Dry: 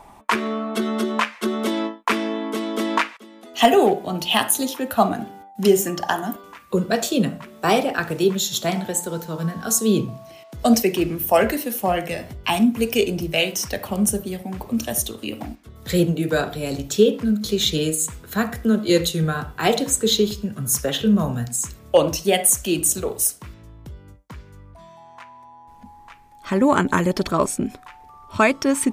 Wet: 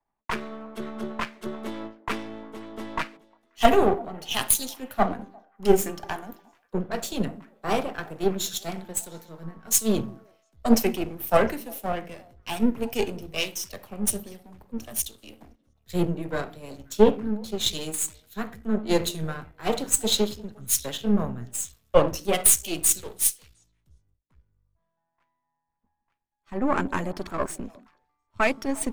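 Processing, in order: half-wave gain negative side -12 dB; delay with a stepping band-pass 0.178 s, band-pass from 250 Hz, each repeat 1.4 oct, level -11.5 dB; three-band expander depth 100%; gain -5.5 dB

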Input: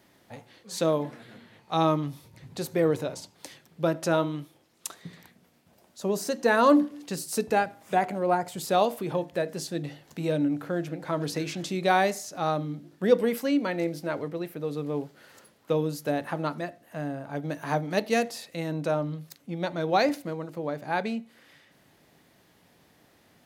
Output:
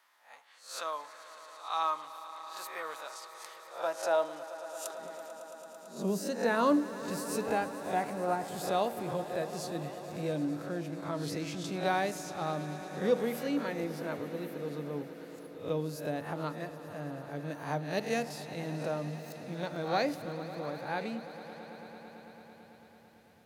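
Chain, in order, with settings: spectral swells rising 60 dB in 0.38 s; high-pass sweep 1100 Hz -> 80 Hz, 3.37–7.3; swelling echo 0.111 s, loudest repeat 5, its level -18 dB; gain -8.5 dB

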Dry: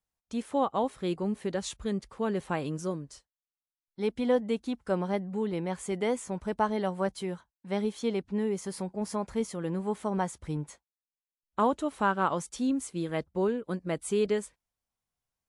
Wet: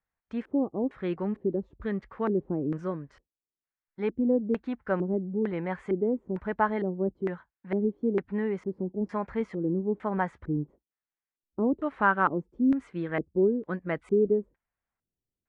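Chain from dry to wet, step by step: LFO low-pass square 1.1 Hz 350–1800 Hz

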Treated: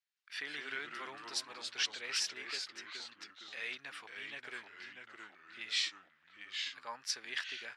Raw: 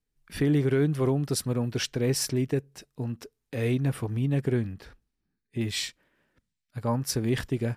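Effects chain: Butterworth band-pass 2800 Hz, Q 0.69; echoes that change speed 0.113 s, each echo -2 st, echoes 3, each echo -6 dB; gain -1 dB

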